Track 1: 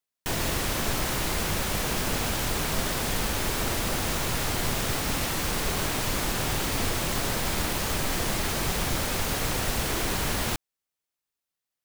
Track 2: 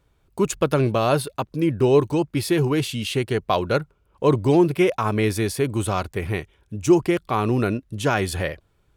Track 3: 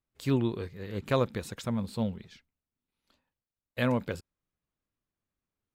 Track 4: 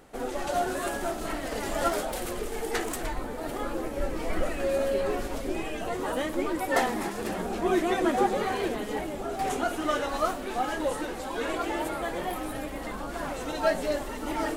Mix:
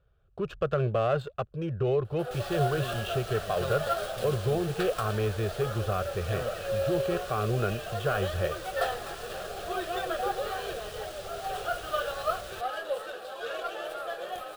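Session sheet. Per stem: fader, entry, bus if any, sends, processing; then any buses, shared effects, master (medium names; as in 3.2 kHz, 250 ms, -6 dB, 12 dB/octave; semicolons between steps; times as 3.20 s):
-15.5 dB, 2.05 s, no send, treble shelf 11 kHz +10 dB
-2.5 dB, 0.00 s, no send, low-pass 2.4 kHz 12 dB/octave; peak limiter -13 dBFS, peak gain reduction 6.5 dB
-6.5 dB, 2.50 s, no send, none
-0.5 dB, 2.05 s, no send, high-pass 430 Hz 12 dB/octave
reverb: none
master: static phaser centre 1.4 kHz, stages 8; sliding maximum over 3 samples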